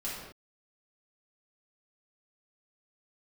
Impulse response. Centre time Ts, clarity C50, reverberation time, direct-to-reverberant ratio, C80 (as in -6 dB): 69 ms, 0.0 dB, not exponential, -8.0 dB, 3.0 dB